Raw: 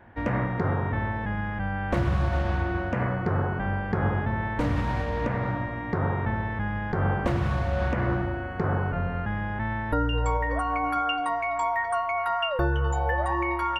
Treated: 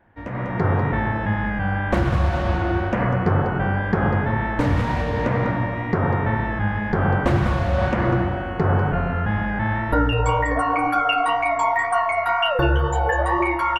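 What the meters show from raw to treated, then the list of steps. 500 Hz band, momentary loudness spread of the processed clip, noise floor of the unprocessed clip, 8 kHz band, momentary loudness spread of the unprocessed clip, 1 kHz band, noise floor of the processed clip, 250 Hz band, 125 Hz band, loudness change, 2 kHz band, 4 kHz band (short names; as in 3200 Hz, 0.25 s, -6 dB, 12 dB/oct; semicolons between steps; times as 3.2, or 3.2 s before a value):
+6.5 dB, 4 LU, -32 dBFS, n/a, 4 LU, +6.0 dB, -27 dBFS, +6.5 dB, +5.5 dB, +6.0 dB, +6.5 dB, +7.0 dB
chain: echo 0.197 s -9.5 dB; flange 2 Hz, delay 3 ms, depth 9.4 ms, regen -38%; AGC gain up to 13.5 dB; gain -3 dB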